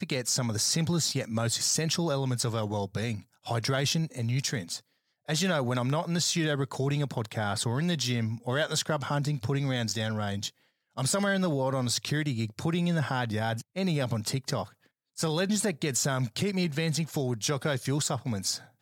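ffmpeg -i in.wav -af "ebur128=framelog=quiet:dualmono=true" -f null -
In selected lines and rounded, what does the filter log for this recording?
Integrated loudness:
  I:         -26.1 LUFS
  Threshold: -36.3 LUFS
Loudness range:
  LRA:         1.8 LU
  Threshold: -46.5 LUFS
  LRA low:   -27.4 LUFS
  LRA high:  -25.6 LUFS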